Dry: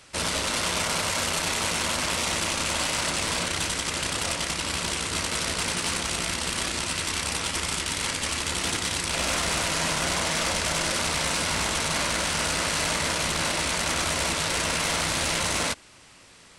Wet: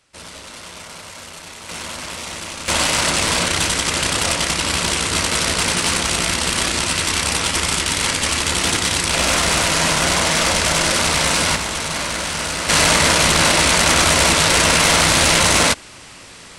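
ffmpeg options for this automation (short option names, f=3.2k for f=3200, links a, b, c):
-af "asetnsamples=n=441:p=0,asendcmd='1.69 volume volume -3dB;2.68 volume volume 9dB;11.56 volume volume 3dB;12.69 volume volume 12dB',volume=-9.5dB"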